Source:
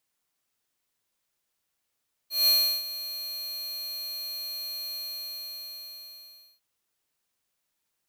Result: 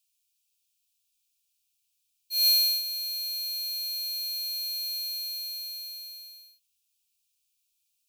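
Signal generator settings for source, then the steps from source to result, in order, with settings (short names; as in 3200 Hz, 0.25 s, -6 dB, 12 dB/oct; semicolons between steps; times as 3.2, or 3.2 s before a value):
ADSR square 4230 Hz, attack 0.176 s, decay 0.347 s, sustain -15.5 dB, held 2.65 s, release 1.65 s -20 dBFS
FFT band-reject 150–2300 Hz; passive tone stack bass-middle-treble 10-0-10; in parallel at -3.5 dB: soft clip -31.5 dBFS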